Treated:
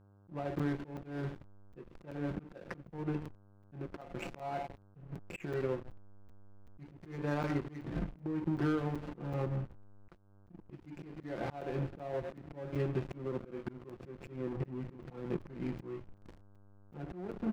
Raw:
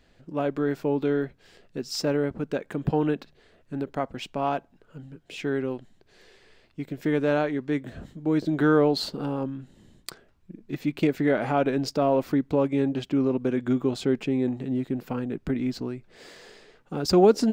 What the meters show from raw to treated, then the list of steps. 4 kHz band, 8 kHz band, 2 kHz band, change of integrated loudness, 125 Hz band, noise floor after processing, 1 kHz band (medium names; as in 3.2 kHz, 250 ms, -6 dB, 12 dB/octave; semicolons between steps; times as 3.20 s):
-21.0 dB, under -20 dB, -12.5 dB, -13.5 dB, -7.0 dB, -61 dBFS, -13.5 dB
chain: steep low-pass 2.7 kHz 96 dB/octave; gate -48 dBFS, range -7 dB; comb 5.8 ms, depth 68%; two-slope reverb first 0.56 s, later 1.7 s, DRR 5 dB; compression 20:1, threshold -32 dBFS, peak gain reduction 25.5 dB; hysteresis with a dead band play -36.5 dBFS; mains buzz 100 Hz, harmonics 16, -67 dBFS -7 dB/octave; slow attack 285 ms; crackling interface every 0.38 s, samples 256, zero, from 0.59 s; trim +4.5 dB